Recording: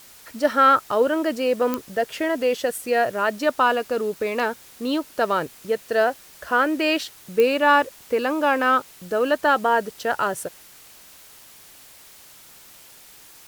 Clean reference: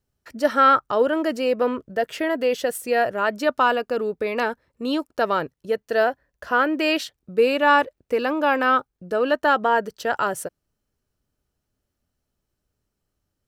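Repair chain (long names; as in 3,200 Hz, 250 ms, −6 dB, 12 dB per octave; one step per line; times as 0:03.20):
click removal
broadband denoise 30 dB, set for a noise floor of −48 dBFS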